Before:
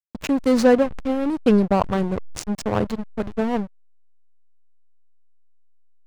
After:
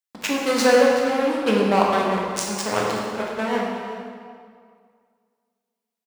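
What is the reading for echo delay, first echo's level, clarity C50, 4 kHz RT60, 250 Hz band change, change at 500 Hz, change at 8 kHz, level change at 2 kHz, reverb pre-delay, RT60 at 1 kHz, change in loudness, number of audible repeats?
374 ms, −15.0 dB, 0.0 dB, 1.6 s, −4.0 dB, +1.5 dB, +8.0 dB, +7.5 dB, 10 ms, 2.1 s, +0.5 dB, 1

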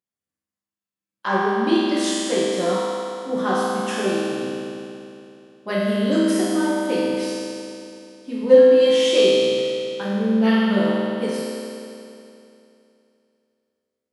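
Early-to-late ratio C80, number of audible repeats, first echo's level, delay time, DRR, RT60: −2.0 dB, no echo audible, no echo audible, no echo audible, −9.5 dB, 2.8 s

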